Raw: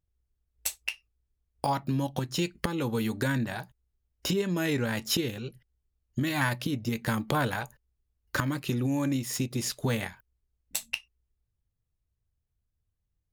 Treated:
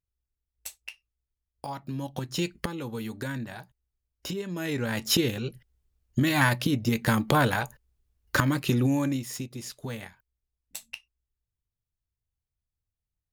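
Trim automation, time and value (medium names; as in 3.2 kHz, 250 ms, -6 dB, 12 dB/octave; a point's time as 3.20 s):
1.69 s -8.5 dB
2.52 s +1.5 dB
2.81 s -5.5 dB
4.49 s -5.5 dB
5.21 s +5 dB
8.84 s +5 dB
9.54 s -7.5 dB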